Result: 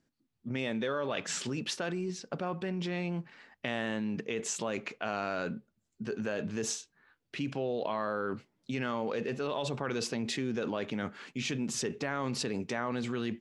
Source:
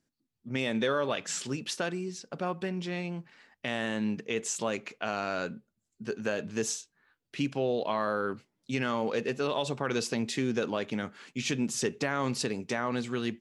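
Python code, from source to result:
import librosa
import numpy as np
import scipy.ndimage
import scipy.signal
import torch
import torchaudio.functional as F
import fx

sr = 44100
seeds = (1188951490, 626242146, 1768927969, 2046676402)

p1 = fx.lowpass(x, sr, hz=3900.0, slope=6)
p2 = fx.over_compress(p1, sr, threshold_db=-37.0, ratio=-1.0)
p3 = p1 + (p2 * 10.0 ** (2.0 / 20.0))
y = p3 * 10.0 ** (-6.5 / 20.0)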